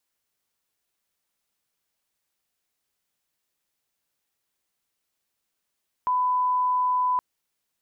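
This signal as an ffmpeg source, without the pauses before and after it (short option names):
-f lavfi -i "sine=f=1000:d=1.12:r=44100,volume=-1.94dB"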